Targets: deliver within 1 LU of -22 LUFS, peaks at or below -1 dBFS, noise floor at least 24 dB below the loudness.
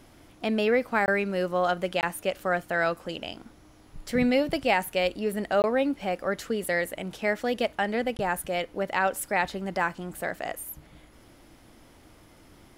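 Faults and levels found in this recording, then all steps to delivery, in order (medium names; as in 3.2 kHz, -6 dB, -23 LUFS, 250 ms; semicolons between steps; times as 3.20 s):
dropouts 4; longest dropout 19 ms; loudness -27.5 LUFS; peak level -9.0 dBFS; loudness target -22.0 LUFS
-> interpolate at 1.06/2.01/5.62/8.17 s, 19 ms; trim +5.5 dB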